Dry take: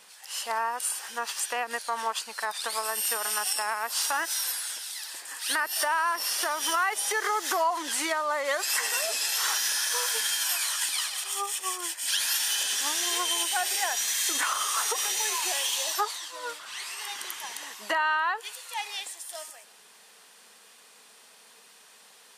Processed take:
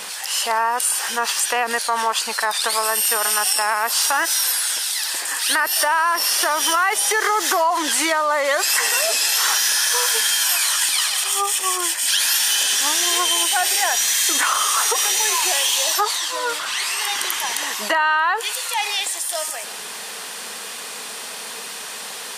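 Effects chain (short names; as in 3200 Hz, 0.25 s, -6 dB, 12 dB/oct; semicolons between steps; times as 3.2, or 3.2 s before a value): fast leveller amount 50%; gain +6.5 dB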